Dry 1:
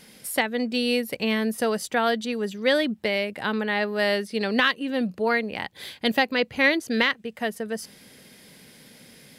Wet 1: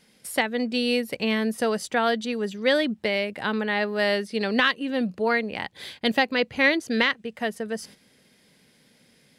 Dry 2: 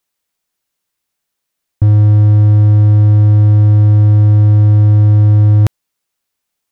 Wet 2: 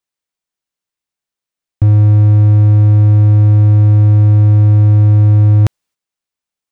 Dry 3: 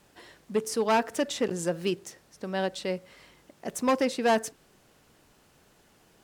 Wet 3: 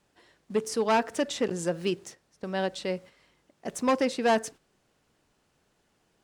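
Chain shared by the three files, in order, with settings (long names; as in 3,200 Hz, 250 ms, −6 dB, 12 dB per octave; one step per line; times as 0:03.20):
noise gate −45 dBFS, range −9 dB
parametric band 14,000 Hz −10.5 dB 0.47 octaves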